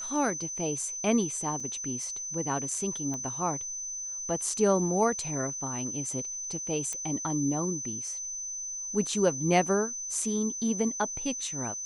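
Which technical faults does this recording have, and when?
tone 6100 Hz -34 dBFS
1.6 gap 4.5 ms
3.14 pop -24 dBFS
6.93 pop -20 dBFS

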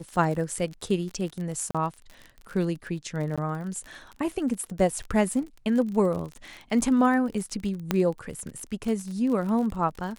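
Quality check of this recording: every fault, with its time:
crackle 45/s -33 dBFS
1.71–1.75 gap 36 ms
3.36–3.38 gap 16 ms
7.91 pop -9 dBFS

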